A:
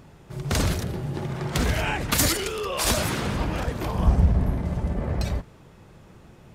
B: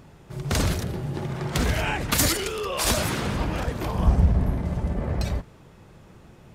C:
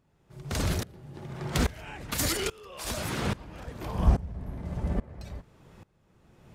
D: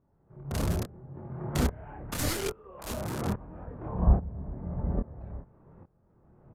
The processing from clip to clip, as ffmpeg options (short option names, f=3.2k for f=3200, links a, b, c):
-af anull
-af "aeval=exprs='val(0)*pow(10,-22*if(lt(mod(-1.2*n/s,1),2*abs(-1.2)/1000),1-mod(-1.2*n/s,1)/(2*abs(-1.2)/1000),(mod(-1.2*n/s,1)-2*abs(-1.2)/1000)/(1-2*abs(-1.2)/1000))/20)':c=same"
-filter_complex "[0:a]flanger=delay=22.5:depth=6.7:speed=0.84,acrossover=split=1400[a][b];[b]acrusher=bits=3:dc=4:mix=0:aa=0.000001[c];[a][c]amix=inputs=2:normalize=0,aresample=32000,aresample=44100,volume=2.5dB"